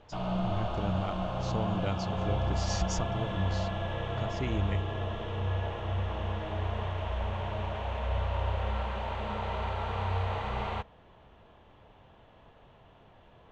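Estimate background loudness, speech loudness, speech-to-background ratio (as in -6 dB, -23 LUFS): -33.5 LUFS, -37.5 LUFS, -4.0 dB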